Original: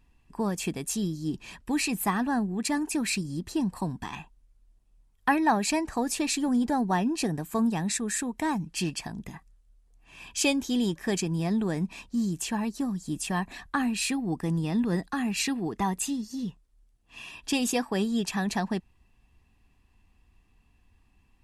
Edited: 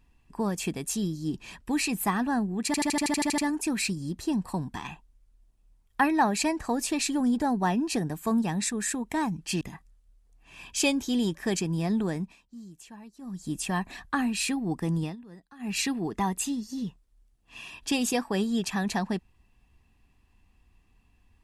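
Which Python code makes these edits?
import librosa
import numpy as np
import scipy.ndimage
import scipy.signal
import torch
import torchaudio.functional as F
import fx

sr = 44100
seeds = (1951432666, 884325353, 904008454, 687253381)

y = fx.edit(x, sr, fx.stutter(start_s=2.66, slice_s=0.08, count=10),
    fx.cut(start_s=8.89, length_s=0.33),
    fx.fade_down_up(start_s=11.61, length_s=1.58, db=-17.0, fade_s=0.37, curve='qsin'),
    fx.fade_down_up(start_s=14.64, length_s=0.69, db=-20.5, fade_s=0.13), tone=tone)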